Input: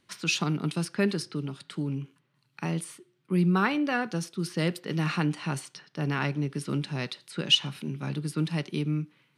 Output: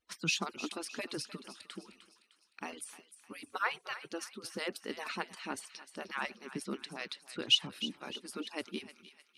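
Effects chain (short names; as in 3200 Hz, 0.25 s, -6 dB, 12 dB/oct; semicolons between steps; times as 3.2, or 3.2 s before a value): median-filter separation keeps percussive; thinning echo 0.305 s, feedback 51%, high-pass 1200 Hz, level -12 dB; gain -4.5 dB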